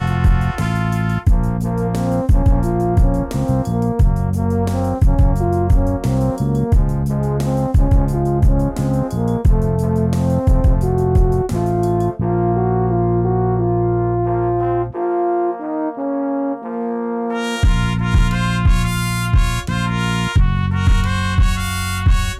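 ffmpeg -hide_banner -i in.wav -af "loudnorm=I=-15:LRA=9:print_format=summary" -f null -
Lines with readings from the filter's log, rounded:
Input Integrated:    -17.8 LUFS
Input True Peak:      -5.2 dBTP
Input LRA:             1.7 LU
Input Threshold:     -27.8 LUFS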